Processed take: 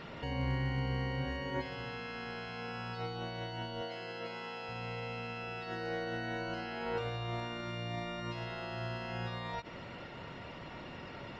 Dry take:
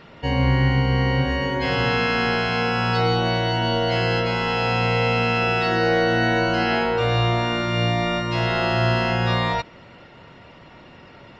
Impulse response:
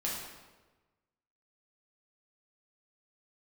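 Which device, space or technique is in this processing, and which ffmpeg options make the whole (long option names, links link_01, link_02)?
de-esser from a sidechain: -filter_complex "[0:a]asplit=2[link_01][link_02];[link_02]highpass=5600,apad=whole_len=502508[link_03];[link_01][link_03]sidechaincompress=threshold=-55dB:ratio=16:attack=0.99:release=47,asettb=1/sr,asplit=3[link_04][link_05][link_06];[link_04]atrim=end=3.814[link_07];[link_05]atrim=start=3.81:end=4.69,asetpts=PTS-STARTPTS,afade=type=in:duration=0.004:curve=qsin,afade=type=out:start_time=0.876:duration=0.004:curve=qsin,highpass=210[link_08];[link_06]atrim=start=4.686[link_09];[link_07][link_08]acrossfade=duration=0.004:curve1=hsin:curve2=qsin[link_10];[link_10][link_09]acrossfade=duration=0.004:curve1=qsin:curve2=hsin,volume=-1dB"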